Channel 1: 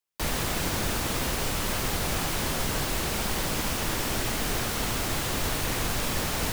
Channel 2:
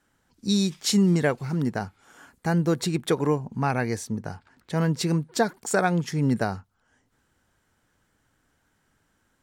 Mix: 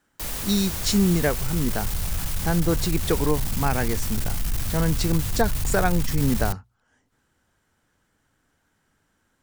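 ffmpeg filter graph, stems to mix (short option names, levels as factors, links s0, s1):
-filter_complex "[0:a]asubboost=boost=11.5:cutoff=120,crystalizer=i=1.5:c=0,asoftclip=type=tanh:threshold=0.251,volume=0.473[s0];[1:a]volume=1[s1];[s0][s1]amix=inputs=2:normalize=0,bandreject=f=60:t=h:w=6,bandreject=f=120:t=h:w=6"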